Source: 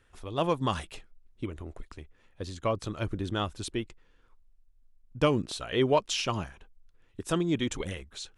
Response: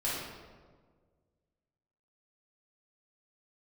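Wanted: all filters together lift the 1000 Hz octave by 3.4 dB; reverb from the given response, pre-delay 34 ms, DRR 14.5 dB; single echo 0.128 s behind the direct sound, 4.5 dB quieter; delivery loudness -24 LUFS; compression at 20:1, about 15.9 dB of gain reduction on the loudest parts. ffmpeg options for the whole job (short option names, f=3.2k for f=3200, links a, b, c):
-filter_complex "[0:a]equalizer=f=1k:t=o:g=4,acompressor=threshold=-33dB:ratio=20,aecho=1:1:128:0.596,asplit=2[a][b];[1:a]atrim=start_sample=2205,adelay=34[c];[b][c]afir=irnorm=-1:irlink=0,volume=-21.5dB[d];[a][d]amix=inputs=2:normalize=0,volume=14.5dB"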